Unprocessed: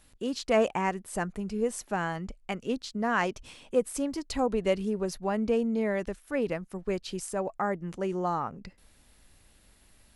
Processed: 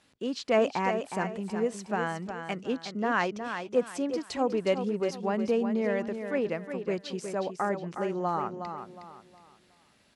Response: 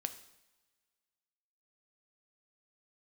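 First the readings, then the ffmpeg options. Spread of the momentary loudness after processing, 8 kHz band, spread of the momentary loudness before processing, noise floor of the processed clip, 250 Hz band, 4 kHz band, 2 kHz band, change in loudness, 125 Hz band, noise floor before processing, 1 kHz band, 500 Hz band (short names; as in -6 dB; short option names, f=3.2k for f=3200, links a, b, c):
8 LU, -5.5 dB, 7 LU, -64 dBFS, 0.0 dB, 0.0 dB, +0.5 dB, 0.0 dB, -1.0 dB, -61 dBFS, +0.5 dB, +0.5 dB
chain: -af "highpass=150,lowpass=6k,aecho=1:1:364|728|1092|1456:0.398|0.131|0.0434|0.0143"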